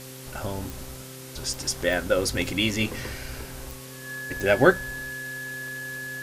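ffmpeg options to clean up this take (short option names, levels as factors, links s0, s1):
-af "adeclick=t=4,bandreject=f=130.5:t=h:w=4,bandreject=f=261:t=h:w=4,bandreject=f=391.5:t=h:w=4,bandreject=f=522:t=h:w=4,bandreject=f=1700:w=30,afwtdn=0.0071"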